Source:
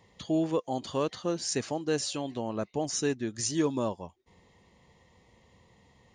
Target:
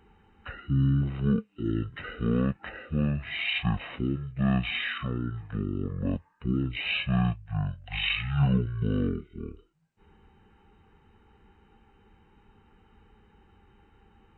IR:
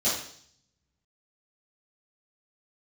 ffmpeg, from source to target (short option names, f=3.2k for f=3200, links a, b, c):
-af "asetrate=18846,aresample=44100,volume=2.5dB"